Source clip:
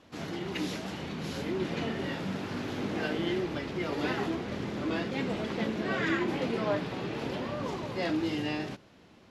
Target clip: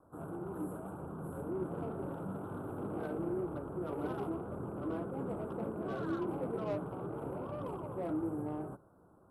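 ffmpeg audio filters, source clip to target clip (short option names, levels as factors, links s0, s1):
-filter_complex "[0:a]asuperstop=centerf=3600:order=20:qfactor=0.53,acrossover=split=600|2900[s0][s1][s2];[s0]equalizer=f=230:w=3.8:g=-8[s3];[s1]asoftclip=type=tanh:threshold=0.0119[s4];[s3][s4][s2]amix=inputs=3:normalize=0,volume=0.631"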